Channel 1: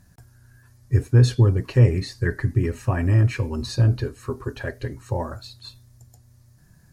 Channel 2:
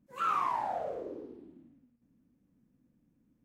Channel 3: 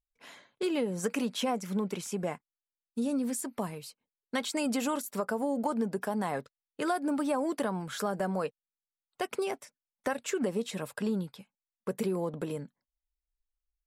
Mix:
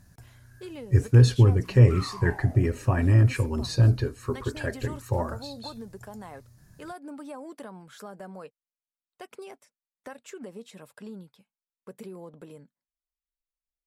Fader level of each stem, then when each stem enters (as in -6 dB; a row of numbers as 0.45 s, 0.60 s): -1.0 dB, -9.5 dB, -10.5 dB; 0.00 s, 1.70 s, 0.00 s